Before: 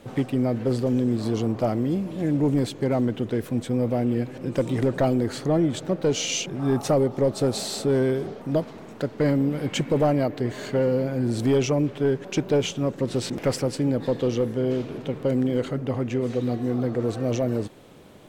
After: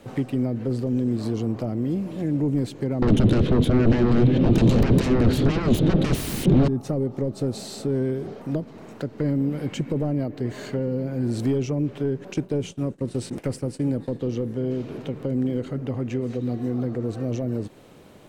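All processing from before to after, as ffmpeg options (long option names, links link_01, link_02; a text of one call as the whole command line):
ffmpeg -i in.wav -filter_complex "[0:a]asettb=1/sr,asplit=3[link_01][link_02][link_03];[link_01]atrim=end=3.024[link_04];[link_02]atrim=start=3.02:end=6.68,asetpts=PTS-STARTPTS,afade=type=in:duration=0.004:curve=qsin,afade=type=out:start_time=3.656:duration=0.004:curve=qsin,lowpass=frequency=3500:width_type=q:width=5,aeval=exprs='0.355*sin(PI/2*8.91*val(0)/0.355)':channel_layout=same[link_05];[link_03]atrim=start=6.676[link_06];[link_04][link_05]acrossfade=duration=0.004:curve1=hsin:curve2=qsin[link_07];[link_07][link_06]acrossfade=duration=0.004:curve1=qsin:curve2=hsin,asettb=1/sr,asplit=3[link_08][link_09][link_10];[link_08]atrim=end=12.344[link_11];[link_09]atrim=start=12.34:end=14.21,asetpts=PTS-STARTPTS,afade=type=in:duration=0.004:curve=qsin,afade=type=out:start_time=1.866:duration=0.004:curve=qsin,agate=range=-33dB:threshold=-29dB:ratio=3:release=100:detection=peak,equalizer=frequency=9100:width_type=o:width=0.35:gain=10.5[link_12];[link_10]atrim=start=14.206[link_13];[link_11][link_12]acrossfade=duration=0.004:curve1=hsin:curve2=qsin[link_14];[link_14][link_13]acrossfade=duration=0.004:curve1=qsin:curve2=hsin,bandreject=frequency=3400:width=23,acrossover=split=380[link_15][link_16];[link_16]acompressor=threshold=-35dB:ratio=6[link_17];[link_15][link_17]amix=inputs=2:normalize=0" out.wav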